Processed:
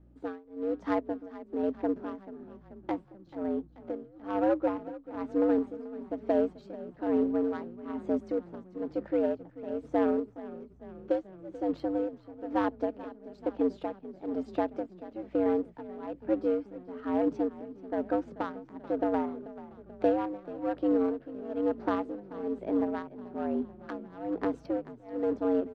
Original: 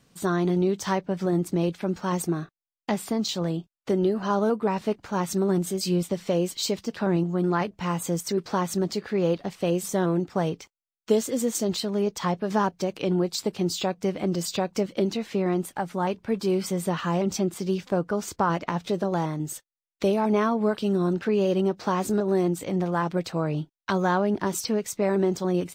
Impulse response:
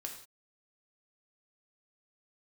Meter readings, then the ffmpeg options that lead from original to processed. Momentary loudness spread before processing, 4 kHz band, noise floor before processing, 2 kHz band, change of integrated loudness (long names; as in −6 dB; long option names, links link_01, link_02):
5 LU, below −20 dB, below −85 dBFS, −10.5 dB, −6.0 dB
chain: -filter_complex "[0:a]bandreject=frequency=990:width=7.9,afreqshift=95,aeval=exprs='val(0)+0.00178*(sin(2*PI*60*n/s)+sin(2*PI*2*60*n/s)/2+sin(2*PI*3*60*n/s)/3+sin(2*PI*4*60*n/s)/4+sin(2*PI*5*60*n/s)/5)':channel_layout=same,acrusher=bits=5:mode=log:mix=0:aa=0.000001,adynamicsmooth=sensitivity=0.5:basefreq=830,tremolo=f=1.1:d=0.98,asplit=7[link_01][link_02][link_03][link_04][link_05][link_06][link_07];[link_02]adelay=435,afreqshift=-30,volume=-16.5dB[link_08];[link_03]adelay=870,afreqshift=-60,volume=-20.7dB[link_09];[link_04]adelay=1305,afreqshift=-90,volume=-24.8dB[link_10];[link_05]adelay=1740,afreqshift=-120,volume=-29dB[link_11];[link_06]adelay=2175,afreqshift=-150,volume=-33.1dB[link_12];[link_07]adelay=2610,afreqshift=-180,volume=-37.3dB[link_13];[link_01][link_08][link_09][link_10][link_11][link_12][link_13]amix=inputs=7:normalize=0,volume=-1dB"